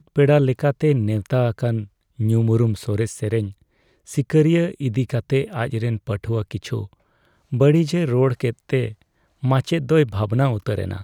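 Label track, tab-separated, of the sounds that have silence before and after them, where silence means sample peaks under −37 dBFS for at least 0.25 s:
2.190000	3.520000	sound
4.080000	6.870000	sound
7.520000	8.930000	sound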